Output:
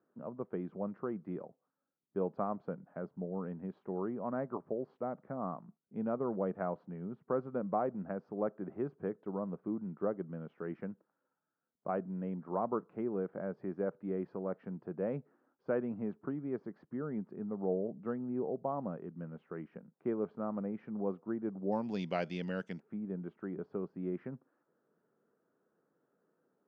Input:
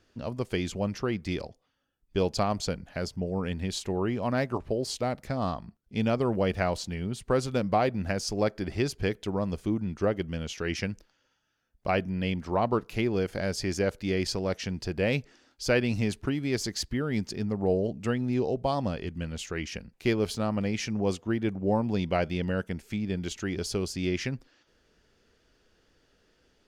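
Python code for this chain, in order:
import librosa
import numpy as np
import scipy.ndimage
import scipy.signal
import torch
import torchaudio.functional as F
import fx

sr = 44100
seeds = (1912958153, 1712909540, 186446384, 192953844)

y = fx.ellip_bandpass(x, sr, low_hz=160.0, high_hz=fx.steps((0.0, 1300.0), (21.71, 6700.0), (22.78, 1300.0)), order=3, stop_db=80)
y = y * librosa.db_to_amplitude(-7.5)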